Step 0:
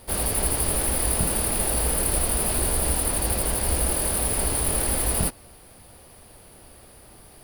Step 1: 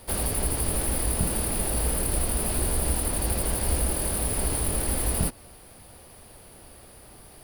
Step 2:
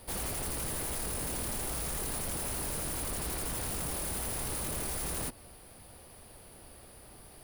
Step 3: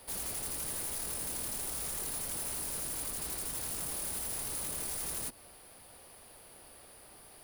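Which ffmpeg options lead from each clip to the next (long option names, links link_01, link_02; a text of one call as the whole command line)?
ffmpeg -i in.wav -filter_complex "[0:a]acrossover=split=370[link_01][link_02];[link_02]acompressor=threshold=-26dB:ratio=6[link_03];[link_01][link_03]amix=inputs=2:normalize=0" out.wav
ffmpeg -i in.wav -af "aeval=exprs='0.0473*(abs(mod(val(0)/0.0473+3,4)-2)-1)':channel_layout=same,volume=-4dB" out.wav
ffmpeg -i in.wav -filter_complex "[0:a]lowshelf=frequency=280:gain=-11,acrossover=split=310|3800[link_01][link_02][link_03];[link_02]alimiter=level_in=17dB:limit=-24dB:level=0:latency=1:release=115,volume=-17dB[link_04];[link_01][link_04][link_03]amix=inputs=3:normalize=0" out.wav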